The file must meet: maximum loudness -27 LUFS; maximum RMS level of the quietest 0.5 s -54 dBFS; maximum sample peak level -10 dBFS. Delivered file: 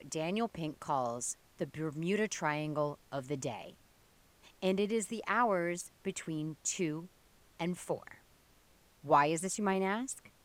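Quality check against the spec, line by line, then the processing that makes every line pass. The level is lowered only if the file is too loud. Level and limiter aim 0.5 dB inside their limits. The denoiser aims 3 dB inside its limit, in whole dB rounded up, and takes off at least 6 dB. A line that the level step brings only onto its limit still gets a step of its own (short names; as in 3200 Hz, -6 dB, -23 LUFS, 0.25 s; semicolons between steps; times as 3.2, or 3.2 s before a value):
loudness -35.0 LUFS: OK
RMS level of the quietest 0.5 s -66 dBFS: OK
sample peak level -15.0 dBFS: OK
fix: none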